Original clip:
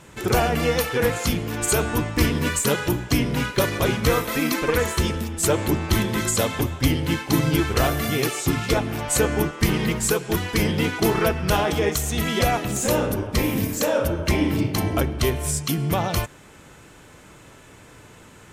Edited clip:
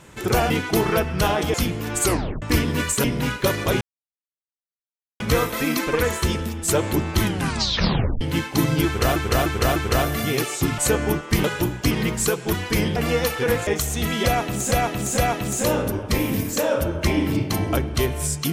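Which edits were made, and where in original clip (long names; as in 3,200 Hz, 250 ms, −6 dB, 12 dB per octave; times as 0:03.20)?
0:00.50–0:01.21: swap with 0:10.79–0:11.83
0:01.71: tape stop 0.38 s
0:02.71–0:03.18: move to 0:09.74
0:03.95: splice in silence 1.39 s
0:05.97: tape stop 0.99 s
0:07.61–0:07.91: repeat, 4 plays
0:08.63–0:09.08: remove
0:12.42–0:12.88: repeat, 3 plays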